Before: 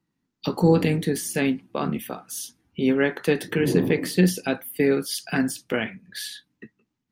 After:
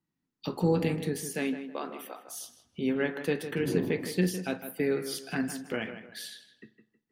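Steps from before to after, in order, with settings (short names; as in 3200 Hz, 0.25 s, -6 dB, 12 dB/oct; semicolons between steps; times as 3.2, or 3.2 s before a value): 1.23–2.27 HPF 130 Hz -> 540 Hz 24 dB/oct; tape echo 0.158 s, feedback 34%, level -9 dB, low-pass 2600 Hz; reverb, pre-delay 41 ms, DRR 15.5 dB; gain -8 dB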